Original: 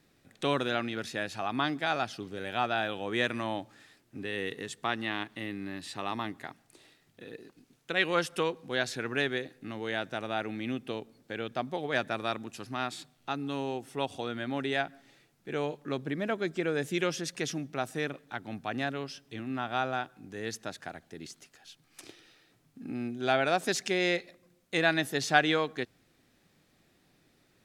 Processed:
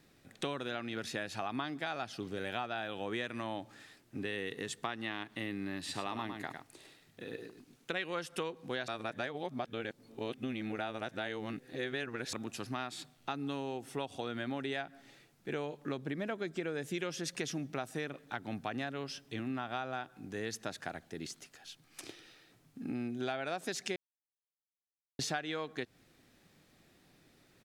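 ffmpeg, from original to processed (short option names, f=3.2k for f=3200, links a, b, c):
-filter_complex "[0:a]asplit=3[a][b][c];[a]afade=t=out:st=5.88:d=0.02[d];[b]aecho=1:1:104:0.398,afade=t=in:st=5.88:d=0.02,afade=t=out:st=7.92:d=0.02[e];[c]afade=t=in:st=7.92:d=0.02[f];[d][e][f]amix=inputs=3:normalize=0,asplit=5[g][h][i][j][k];[g]atrim=end=8.882[l];[h]atrim=start=8.878:end=12.332,asetpts=PTS-STARTPTS,areverse[m];[i]atrim=start=12.328:end=23.96,asetpts=PTS-STARTPTS,afade=t=out:st=11.628:d=0.004:c=hsin[n];[j]atrim=start=23.96:end=25.19,asetpts=PTS-STARTPTS,volume=0[o];[k]atrim=start=25.19,asetpts=PTS-STARTPTS,afade=t=in:d=0.004:c=hsin[p];[l][m]acrossfade=d=0.004:c1=hsin:c2=hsin[q];[n][o][p]concat=n=3:v=0:a=1[r];[q][r]acrossfade=d=0.004:c1=hsin:c2=hsin,acompressor=threshold=-35dB:ratio=8,volume=1.5dB"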